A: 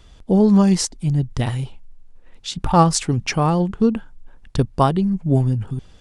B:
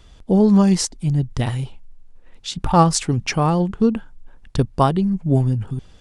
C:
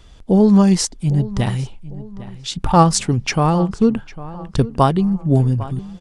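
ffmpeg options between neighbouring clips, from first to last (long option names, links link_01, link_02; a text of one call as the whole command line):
ffmpeg -i in.wav -af anull out.wav
ffmpeg -i in.wav -filter_complex "[0:a]asplit=2[link_01][link_02];[link_02]adelay=802,lowpass=frequency=2600:poles=1,volume=-16.5dB,asplit=2[link_03][link_04];[link_04]adelay=802,lowpass=frequency=2600:poles=1,volume=0.39,asplit=2[link_05][link_06];[link_06]adelay=802,lowpass=frequency=2600:poles=1,volume=0.39[link_07];[link_01][link_03][link_05][link_07]amix=inputs=4:normalize=0,volume=2dB" out.wav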